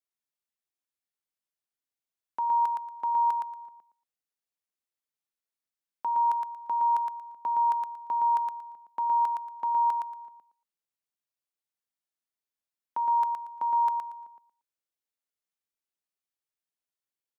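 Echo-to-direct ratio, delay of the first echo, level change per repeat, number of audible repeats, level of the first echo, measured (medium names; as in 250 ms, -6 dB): -4.0 dB, 116 ms, -13.5 dB, 3, -4.0 dB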